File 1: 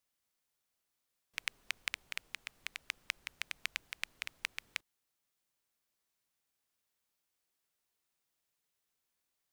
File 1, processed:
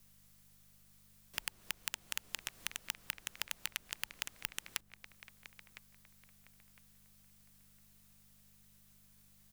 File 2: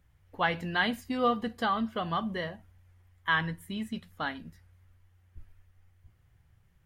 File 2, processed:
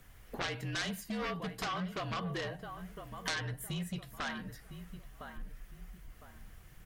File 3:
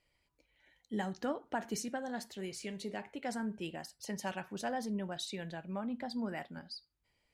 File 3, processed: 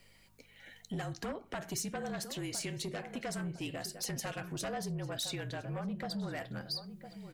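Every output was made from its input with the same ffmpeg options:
-filter_complex "[0:a]acompressor=threshold=-52dB:ratio=2.5,aeval=exprs='val(0)+0.0002*(sin(2*PI*50*n/s)+sin(2*PI*2*50*n/s)/2+sin(2*PI*3*50*n/s)/3+sin(2*PI*4*50*n/s)/4+sin(2*PI*5*50*n/s)/5)':c=same,equalizer=f=72:t=o:w=0.89:g=-13.5,asplit=2[a][b];[b]adelay=1008,lowpass=f=1.8k:p=1,volume=-12dB,asplit=2[c][d];[d]adelay=1008,lowpass=f=1.8k:p=1,volume=0.34,asplit=2[e][f];[f]adelay=1008,lowpass=f=1.8k:p=1,volume=0.34[g];[c][e][g]amix=inputs=3:normalize=0[h];[a][h]amix=inputs=2:normalize=0,afreqshift=-43,aeval=exprs='0.0447*(cos(1*acos(clip(val(0)/0.0447,-1,1)))-cos(1*PI/2))+0.0178*(cos(7*acos(clip(val(0)/0.0447,-1,1)))-cos(7*PI/2))':c=same,highshelf=f=6.3k:g=6.5,bandreject=f=880:w=14,volume=8dB"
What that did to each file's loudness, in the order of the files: 0.0, -8.0, +1.0 LU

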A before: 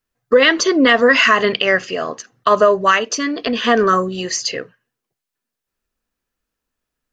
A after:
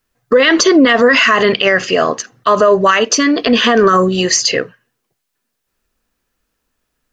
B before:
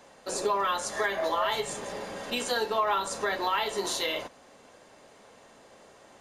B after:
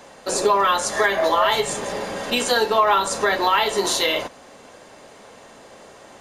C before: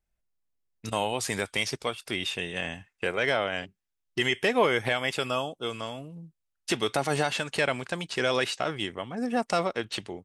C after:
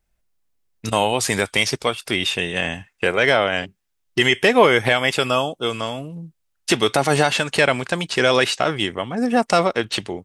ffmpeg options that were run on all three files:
-af "alimiter=level_in=10.5dB:limit=-1dB:release=50:level=0:latency=1,volume=-1dB"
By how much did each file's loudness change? +3.5, +9.5, +9.5 LU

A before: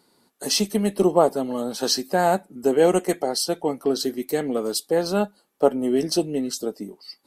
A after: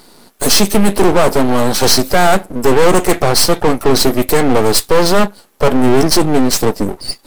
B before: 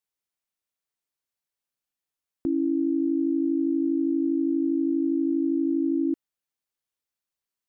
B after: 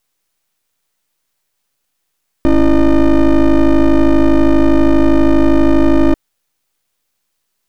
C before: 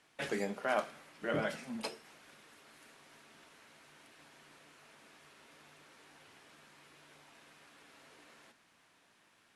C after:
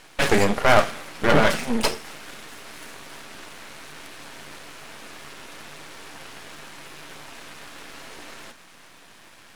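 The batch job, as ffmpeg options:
-af "apsyclip=17dB,acontrast=67,aeval=exprs='max(val(0),0)':c=same,volume=-1dB"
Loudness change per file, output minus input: +10.0, +13.5, +17.0 LU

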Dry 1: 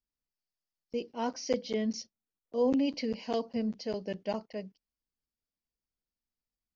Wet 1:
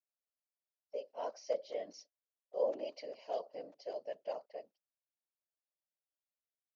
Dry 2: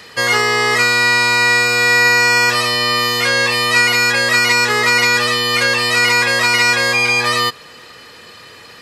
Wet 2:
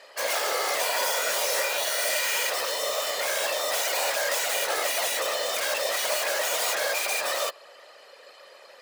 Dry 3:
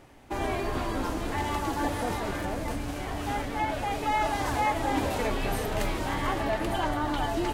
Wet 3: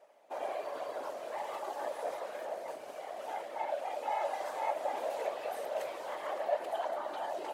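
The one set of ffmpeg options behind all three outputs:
-af "aeval=exprs='(mod(2.99*val(0)+1,2)-1)/2.99':c=same,afftfilt=real='hypot(re,im)*cos(2*PI*random(0))':imag='hypot(re,im)*sin(2*PI*random(1))':win_size=512:overlap=0.75,highpass=f=590:t=q:w=4.9,volume=-7.5dB"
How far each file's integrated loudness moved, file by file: -8.0, -13.0, -8.0 LU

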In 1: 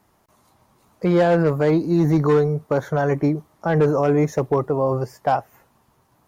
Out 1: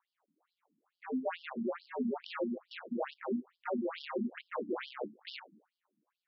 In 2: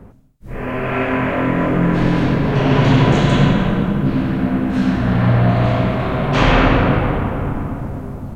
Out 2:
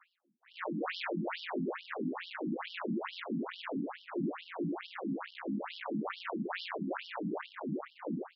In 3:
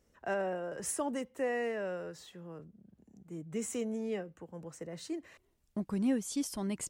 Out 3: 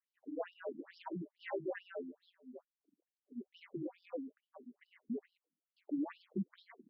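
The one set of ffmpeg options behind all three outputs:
-af "agate=range=-14dB:threshold=-45dB:ratio=16:detection=peak,equalizer=f=3.6k:t=o:w=0.89:g=-3,bandreject=f=780:w=18,acompressor=threshold=-19dB:ratio=6,aresample=11025,volume=28dB,asoftclip=hard,volume=-28dB,aresample=44100,aeval=exprs='val(0)*sin(2*PI*88*n/s)':c=same,asoftclip=type=tanh:threshold=-27.5dB,afftfilt=real='re*between(b*sr/1024,220*pow(4100/220,0.5+0.5*sin(2*PI*2.3*pts/sr))/1.41,220*pow(4100/220,0.5+0.5*sin(2*PI*2.3*pts/sr))*1.41)':imag='im*between(b*sr/1024,220*pow(4100/220,0.5+0.5*sin(2*PI*2.3*pts/sr))/1.41,220*pow(4100/220,0.5+0.5*sin(2*PI*2.3*pts/sr))*1.41)':win_size=1024:overlap=0.75,volume=5dB"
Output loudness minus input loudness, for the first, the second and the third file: -19.0, -22.0, -8.0 LU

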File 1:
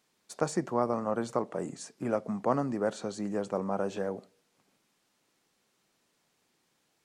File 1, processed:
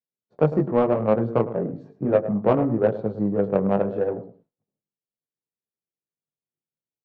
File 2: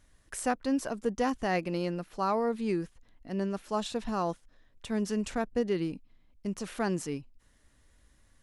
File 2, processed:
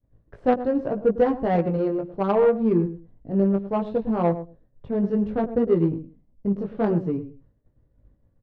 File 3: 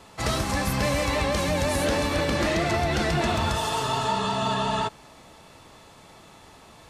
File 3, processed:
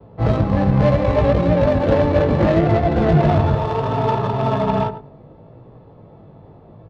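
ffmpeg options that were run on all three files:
-filter_complex "[0:a]equalizer=f=125:t=o:w=1:g=11,equalizer=f=500:t=o:w=1:g=7,equalizer=f=4k:t=o:w=1:g=7,equalizer=f=8k:t=o:w=1:g=-6,asplit=2[a][b];[b]aecho=0:1:106|212:0.266|0.0479[c];[a][c]amix=inputs=2:normalize=0,flanger=delay=17.5:depth=3:speed=0.7,adynamicsmooth=sensitivity=0.5:basefreq=680,agate=range=-33dB:threshold=-58dB:ratio=3:detection=peak,volume=7.5dB"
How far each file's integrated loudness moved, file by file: +9.5, +9.0, +7.5 LU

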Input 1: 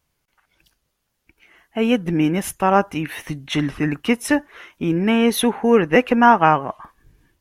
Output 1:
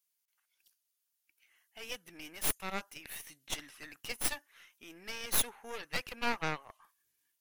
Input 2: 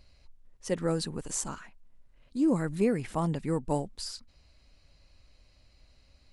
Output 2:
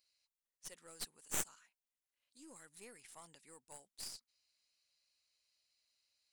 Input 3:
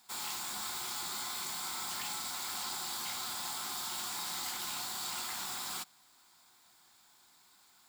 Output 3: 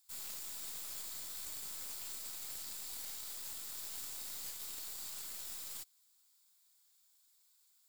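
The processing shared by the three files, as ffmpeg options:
-af "aderivative,aeval=exprs='0.316*(cos(1*acos(clip(val(0)/0.316,-1,1)))-cos(1*PI/2))+0.0891*(cos(8*acos(clip(val(0)/0.316,-1,1)))-cos(8*PI/2))':c=same,volume=-7dB"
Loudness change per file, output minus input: -18.5, -15.5, -5.5 LU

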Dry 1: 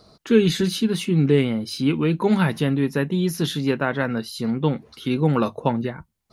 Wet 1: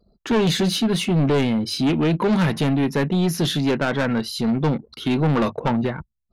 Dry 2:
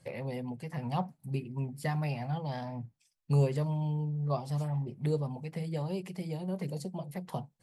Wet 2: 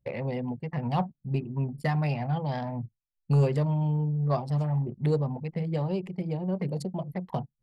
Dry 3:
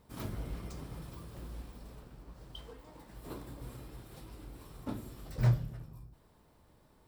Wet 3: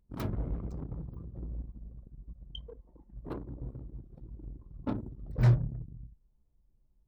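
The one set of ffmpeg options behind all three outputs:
-af "anlmdn=0.1,highshelf=f=11k:g=-7,asoftclip=type=tanh:threshold=-21dB,volume=6dB"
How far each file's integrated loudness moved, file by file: +1.0, +5.0, +5.5 LU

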